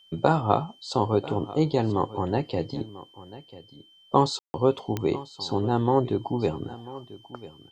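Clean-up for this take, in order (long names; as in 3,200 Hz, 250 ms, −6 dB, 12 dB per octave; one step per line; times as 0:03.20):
click removal
notch filter 3,100 Hz, Q 30
ambience match 0:04.39–0:04.54
echo removal 992 ms −17.5 dB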